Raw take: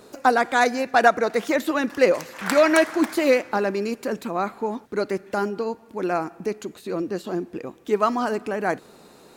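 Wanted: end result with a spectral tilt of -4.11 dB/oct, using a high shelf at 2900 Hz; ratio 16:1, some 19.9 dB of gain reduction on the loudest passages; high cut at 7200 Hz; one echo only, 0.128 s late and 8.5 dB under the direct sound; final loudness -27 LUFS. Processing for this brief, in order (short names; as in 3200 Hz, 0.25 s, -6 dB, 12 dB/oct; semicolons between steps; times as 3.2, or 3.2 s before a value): LPF 7200 Hz; high shelf 2900 Hz +7.5 dB; compressor 16:1, threshold -31 dBFS; echo 0.128 s -8.5 dB; gain +8.5 dB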